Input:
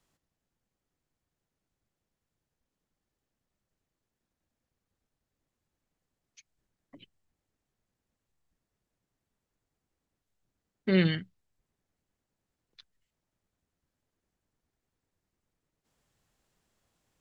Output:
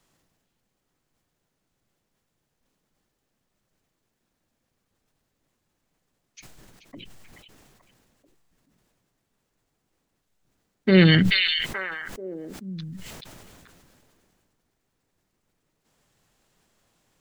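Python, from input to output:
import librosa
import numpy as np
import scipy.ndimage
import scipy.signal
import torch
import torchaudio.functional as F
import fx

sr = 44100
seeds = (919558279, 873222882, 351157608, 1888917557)

y = fx.peak_eq(x, sr, hz=64.0, db=-8.0, octaves=0.92)
y = fx.echo_stepped(y, sr, ms=433, hz=3200.0, octaves=-1.4, feedback_pct=70, wet_db=-9)
y = fx.sustainer(y, sr, db_per_s=22.0)
y = y * 10.0 ** (8.5 / 20.0)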